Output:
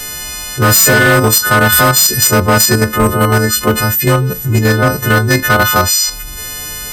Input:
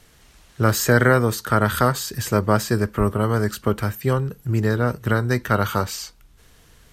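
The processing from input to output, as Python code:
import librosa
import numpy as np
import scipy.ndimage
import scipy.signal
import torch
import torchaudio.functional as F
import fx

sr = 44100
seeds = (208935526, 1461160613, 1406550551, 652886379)

p1 = fx.freq_snap(x, sr, grid_st=3)
p2 = fx.level_steps(p1, sr, step_db=19)
p3 = p1 + (p2 * 10.0 ** (2.5 / 20.0))
p4 = np.clip(p3, -10.0 ** (-8.0 / 20.0), 10.0 ** (-8.0 / 20.0))
p5 = fx.env_flatten(p4, sr, amount_pct=50)
y = p5 * 10.0 ** (3.0 / 20.0)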